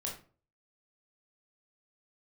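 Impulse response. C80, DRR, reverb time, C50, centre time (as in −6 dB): 12.5 dB, −2.0 dB, 0.40 s, 7.0 dB, 27 ms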